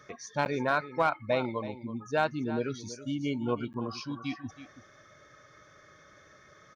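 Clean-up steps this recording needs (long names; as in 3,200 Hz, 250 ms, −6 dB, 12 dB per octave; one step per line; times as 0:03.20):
clipped peaks rebuilt −16.5 dBFS
repair the gap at 0:00.45/0:03.73, 9.8 ms
echo removal 326 ms −14 dB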